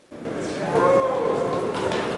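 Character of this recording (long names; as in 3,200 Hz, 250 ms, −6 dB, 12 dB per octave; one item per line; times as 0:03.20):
sample-and-hold tremolo 4 Hz, depth 75%
a quantiser's noise floor 10 bits, dither none
AC-3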